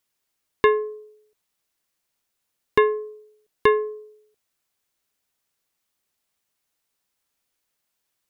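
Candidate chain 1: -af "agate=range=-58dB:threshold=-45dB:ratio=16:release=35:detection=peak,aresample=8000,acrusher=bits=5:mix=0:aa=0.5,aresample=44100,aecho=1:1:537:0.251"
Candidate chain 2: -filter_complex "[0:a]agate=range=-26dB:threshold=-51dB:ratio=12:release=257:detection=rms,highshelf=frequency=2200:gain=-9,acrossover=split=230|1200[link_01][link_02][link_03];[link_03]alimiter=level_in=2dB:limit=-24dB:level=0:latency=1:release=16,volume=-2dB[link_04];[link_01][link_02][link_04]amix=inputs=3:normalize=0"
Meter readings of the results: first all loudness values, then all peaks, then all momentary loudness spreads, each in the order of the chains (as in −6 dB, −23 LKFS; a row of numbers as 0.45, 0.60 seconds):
−24.5, −24.5 LKFS; −4.0, −7.5 dBFS; 13, 18 LU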